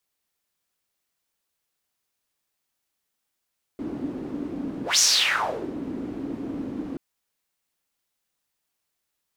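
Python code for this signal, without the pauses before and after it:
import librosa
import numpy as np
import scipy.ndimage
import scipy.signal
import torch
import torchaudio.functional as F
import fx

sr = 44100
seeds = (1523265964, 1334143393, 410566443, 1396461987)

y = fx.whoosh(sr, seeds[0], length_s=3.18, peak_s=1.2, rise_s=0.16, fall_s=0.77, ends_hz=280.0, peak_hz=6000.0, q=5.0, swell_db=14)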